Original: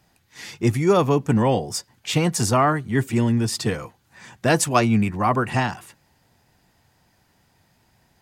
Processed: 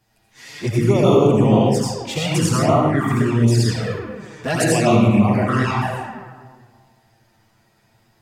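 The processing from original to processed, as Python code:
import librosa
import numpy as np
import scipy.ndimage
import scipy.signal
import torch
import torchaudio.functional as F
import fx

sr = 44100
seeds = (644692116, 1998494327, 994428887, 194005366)

y = fx.rev_freeverb(x, sr, rt60_s=1.7, hf_ratio=0.55, predelay_ms=45, drr_db=-6.0)
y = fx.env_flanger(y, sr, rest_ms=9.2, full_db=-8.5)
y = F.gain(torch.from_numpy(y), -1.0).numpy()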